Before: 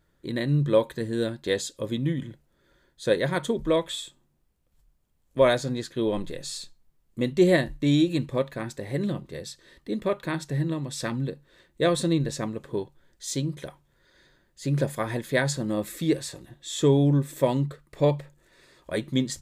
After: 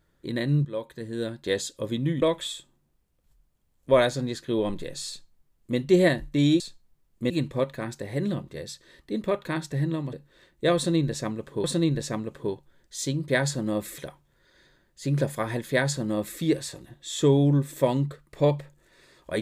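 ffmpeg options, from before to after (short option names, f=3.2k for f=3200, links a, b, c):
-filter_complex "[0:a]asplit=9[a][b][c][d][e][f][g][h][i];[a]atrim=end=0.65,asetpts=PTS-STARTPTS,afade=t=out:st=0.646:d=0.004:c=hsin:silence=0.158489[j];[b]atrim=start=0.65:end=2.222,asetpts=PTS-STARTPTS,afade=t=in:d=0.95:silence=0.158489[k];[c]atrim=start=3.698:end=8.082[l];[d]atrim=start=6.558:end=7.262[m];[e]atrim=start=8.078:end=10.912[n];[f]atrim=start=11.298:end=12.812[o];[g]atrim=start=11.928:end=13.582[p];[h]atrim=start=15.308:end=16.002[q];[i]atrim=start=13.578[r];[j][k]concat=n=2:v=0:a=1[s];[s][l]acrossfade=d=0.004:c1=hsin:c2=hsin[t];[t][m]acrossfade=d=0.004:c1=hsin:c2=hsin[u];[u][n]acrossfade=d=0.004:c1=hsin:c2=hsin[v];[v][o]acrossfade=d=0.004:c1=hsin:c2=hsin[w];[w][p]acrossfade=d=0.004:c1=hsin:c2=hsin[x];[x][q]acrossfade=d=0.004:c1=hsin:c2=hsin[y];[y][r]acrossfade=d=0.004:c1=hsin:c2=hsin"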